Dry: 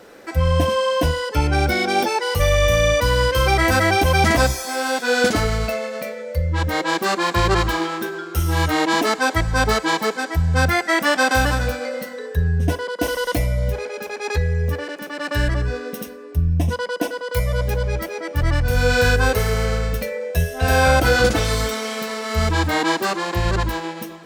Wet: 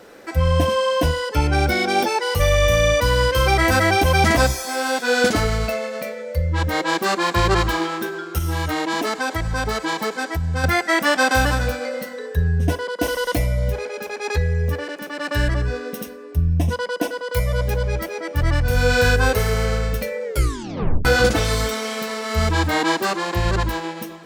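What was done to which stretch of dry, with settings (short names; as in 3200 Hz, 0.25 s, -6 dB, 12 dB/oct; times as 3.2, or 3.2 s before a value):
8.38–10.64 compressor 4:1, threshold -19 dBFS
20.24 tape stop 0.81 s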